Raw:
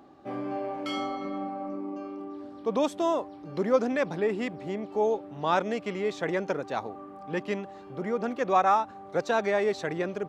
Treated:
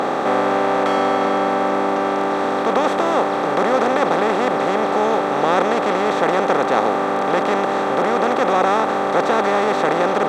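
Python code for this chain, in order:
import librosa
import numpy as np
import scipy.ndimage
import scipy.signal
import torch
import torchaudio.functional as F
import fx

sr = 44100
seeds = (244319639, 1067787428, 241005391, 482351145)

y = fx.bin_compress(x, sr, power=0.2)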